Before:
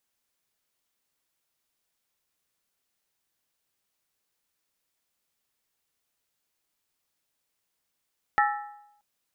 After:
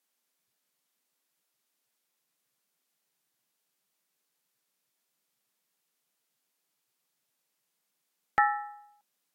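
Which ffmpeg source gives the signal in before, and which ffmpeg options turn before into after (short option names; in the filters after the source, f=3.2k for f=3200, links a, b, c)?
-f lavfi -i "aevalsrc='0.112*pow(10,-3*t/0.81)*sin(2*PI*828*t)+0.0841*pow(10,-3*t/0.642)*sin(2*PI*1319.8*t)+0.0631*pow(10,-3*t/0.554)*sin(2*PI*1768.6*t)+0.0473*pow(10,-3*t/0.535)*sin(2*PI*1901.1*t)':d=0.63:s=44100"
-ar 48000 -c:a libvorbis -b:a 64k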